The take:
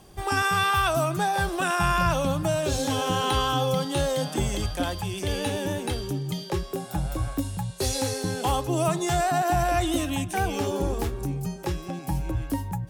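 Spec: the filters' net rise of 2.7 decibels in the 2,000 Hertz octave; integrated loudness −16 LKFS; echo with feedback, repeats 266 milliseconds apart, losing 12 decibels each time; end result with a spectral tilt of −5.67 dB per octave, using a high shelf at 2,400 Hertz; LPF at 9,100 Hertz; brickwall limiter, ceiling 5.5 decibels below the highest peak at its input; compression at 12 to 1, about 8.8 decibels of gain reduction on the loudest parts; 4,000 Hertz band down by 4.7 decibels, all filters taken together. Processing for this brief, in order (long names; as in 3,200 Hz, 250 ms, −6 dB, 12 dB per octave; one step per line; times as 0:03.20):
low-pass filter 9,100 Hz
parametric band 2,000 Hz +7 dB
high-shelf EQ 2,400 Hz −4.5 dB
parametric band 4,000 Hz −5 dB
downward compressor 12 to 1, threshold −27 dBFS
brickwall limiter −23.5 dBFS
repeating echo 266 ms, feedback 25%, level −12 dB
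level +17 dB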